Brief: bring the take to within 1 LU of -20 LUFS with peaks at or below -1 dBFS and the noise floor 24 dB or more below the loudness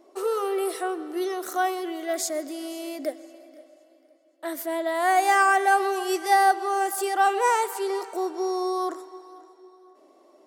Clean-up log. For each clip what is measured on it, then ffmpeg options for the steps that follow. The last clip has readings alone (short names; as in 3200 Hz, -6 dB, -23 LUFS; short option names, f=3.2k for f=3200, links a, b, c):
loudness -25.0 LUFS; peak -7.5 dBFS; loudness target -20.0 LUFS
-> -af "volume=5dB"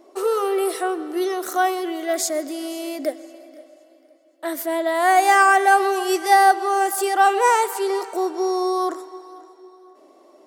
loudness -20.0 LUFS; peak -2.5 dBFS; noise floor -53 dBFS